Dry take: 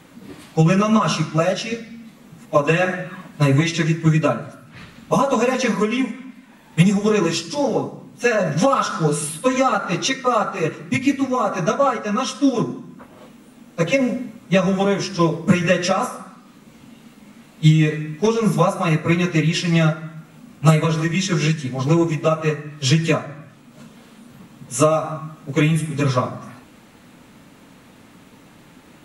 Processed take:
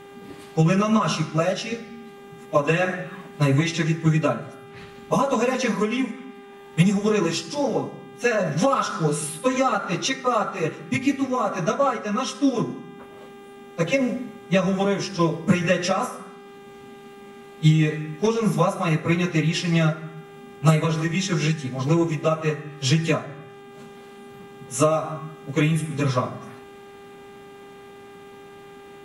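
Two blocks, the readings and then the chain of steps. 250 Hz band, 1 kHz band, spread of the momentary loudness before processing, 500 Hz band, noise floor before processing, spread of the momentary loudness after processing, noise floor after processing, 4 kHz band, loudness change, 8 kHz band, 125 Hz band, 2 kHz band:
−3.5 dB, −3.5 dB, 11 LU, −3.5 dB, −48 dBFS, 18 LU, −44 dBFS, −3.5 dB, −3.5 dB, −3.5 dB, −3.5 dB, −3.5 dB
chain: hum with harmonics 400 Hz, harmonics 9, −41 dBFS −7 dB per octave
level −3.5 dB

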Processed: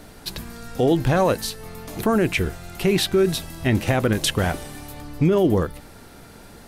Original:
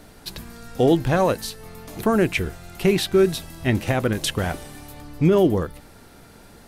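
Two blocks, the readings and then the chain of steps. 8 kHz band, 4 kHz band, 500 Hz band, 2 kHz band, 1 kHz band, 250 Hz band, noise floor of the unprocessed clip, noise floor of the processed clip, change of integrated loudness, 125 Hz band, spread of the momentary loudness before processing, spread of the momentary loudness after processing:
+2.5 dB, +2.5 dB, −0.5 dB, +1.0 dB, +0.5 dB, 0.0 dB, −48 dBFS, −45 dBFS, 0.0 dB, +1.0 dB, 20 LU, 16 LU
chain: brickwall limiter −13 dBFS, peak gain reduction 5.5 dB
level +3 dB

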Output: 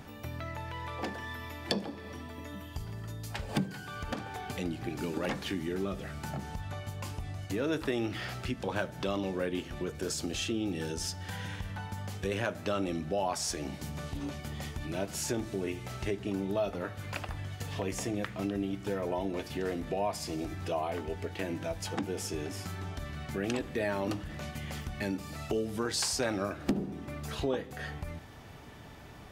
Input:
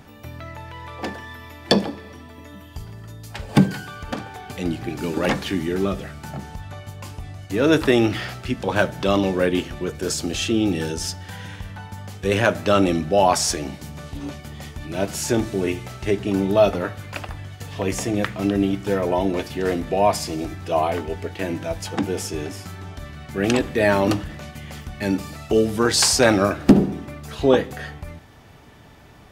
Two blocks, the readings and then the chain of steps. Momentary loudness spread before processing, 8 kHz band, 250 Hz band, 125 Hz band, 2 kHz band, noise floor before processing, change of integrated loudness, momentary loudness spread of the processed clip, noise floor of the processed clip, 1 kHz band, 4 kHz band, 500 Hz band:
19 LU, −11.5 dB, −13.0 dB, −10.0 dB, −12.0 dB, −44 dBFS, −13.5 dB, 8 LU, −46 dBFS, −13.0 dB, −11.5 dB, −13.5 dB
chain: downward compressor 2.5 to 1, threshold −33 dBFS, peak gain reduction 17.5 dB
level −2 dB

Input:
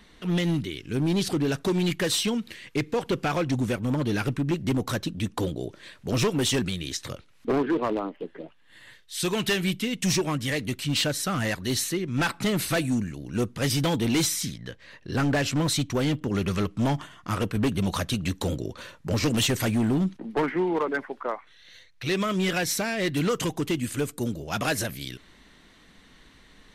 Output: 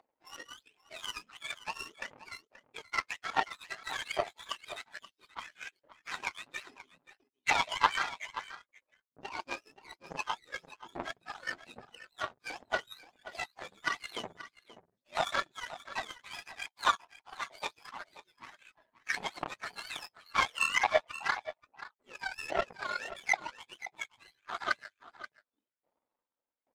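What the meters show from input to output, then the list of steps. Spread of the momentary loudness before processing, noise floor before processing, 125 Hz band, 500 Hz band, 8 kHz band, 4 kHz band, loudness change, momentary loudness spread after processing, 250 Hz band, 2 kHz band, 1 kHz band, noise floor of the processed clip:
9 LU, −56 dBFS, −31.5 dB, −13.5 dB, −15.5 dB, −10.0 dB, −9.0 dB, 20 LU, −29.0 dB, −3.0 dB, −1.5 dB, below −85 dBFS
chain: frequency axis turned over on the octave scale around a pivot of 990 Hz
low-pass filter 3,000 Hz 12 dB per octave
noise reduction from a noise print of the clip's start 9 dB
tilt shelving filter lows +4.5 dB, about 750 Hz
in parallel at +2 dB: upward compression, threshold −24 dBFS
on the sum: soft clipping −3 dBFS, distortion −14 dB
auto-filter high-pass saw up 1.2 Hz 750–1,800 Hz
flanger 1.5 Hz, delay 2.6 ms, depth 9.6 ms, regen +6%
power curve on the samples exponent 2
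on a send: single-tap delay 530 ms −14 dB
on the sum: one half of a high-frequency compander decoder only
level +3 dB

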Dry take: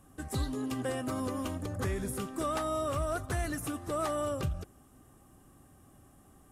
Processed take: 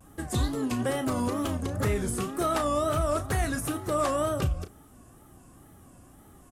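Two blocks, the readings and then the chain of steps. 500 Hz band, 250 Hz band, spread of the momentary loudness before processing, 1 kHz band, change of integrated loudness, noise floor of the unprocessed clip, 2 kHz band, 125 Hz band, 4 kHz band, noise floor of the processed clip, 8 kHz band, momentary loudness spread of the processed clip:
+6.0 dB, +5.5 dB, 5 LU, +6.0 dB, +6.0 dB, −60 dBFS, +5.5 dB, +6.0 dB, +6.0 dB, −54 dBFS, +6.0 dB, 5 LU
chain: tape wow and flutter 140 cents
double-tracking delay 34 ms −10.5 dB
level +5.5 dB

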